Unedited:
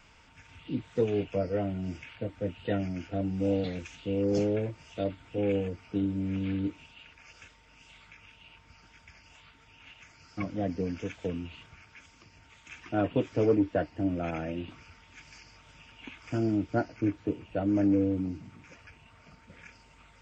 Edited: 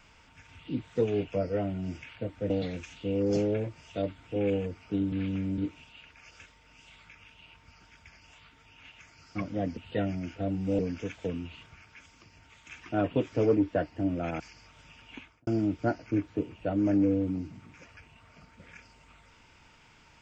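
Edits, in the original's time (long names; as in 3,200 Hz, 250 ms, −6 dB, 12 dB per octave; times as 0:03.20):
0:02.50–0:03.52: move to 0:10.79
0:06.14–0:06.60: reverse
0:14.40–0:15.30: remove
0:16.05–0:16.37: fade out and dull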